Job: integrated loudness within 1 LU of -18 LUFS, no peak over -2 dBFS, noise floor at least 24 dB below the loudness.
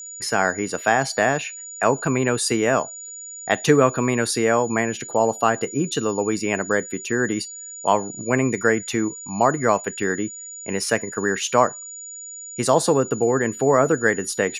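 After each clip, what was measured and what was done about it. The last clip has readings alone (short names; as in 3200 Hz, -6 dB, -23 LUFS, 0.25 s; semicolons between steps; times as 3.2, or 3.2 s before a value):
ticks 21/s; steady tone 6900 Hz; tone level -34 dBFS; loudness -21.5 LUFS; peak -2.0 dBFS; loudness target -18.0 LUFS
-> de-click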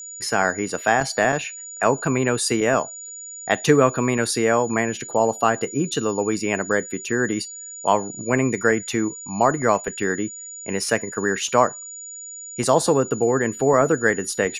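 ticks 0.14/s; steady tone 6900 Hz; tone level -34 dBFS
-> notch 6900 Hz, Q 30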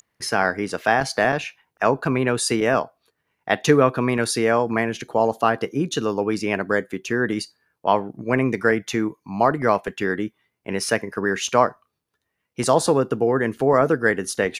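steady tone none; loudness -21.5 LUFS; peak -2.5 dBFS; loudness target -18.0 LUFS
-> gain +3.5 dB; limiter -2 dBFS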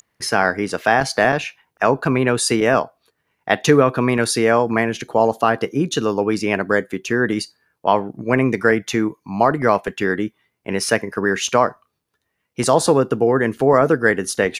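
loudness -18.5 LUFS; peak -2.0 dBFS; noise floor -74 dBFS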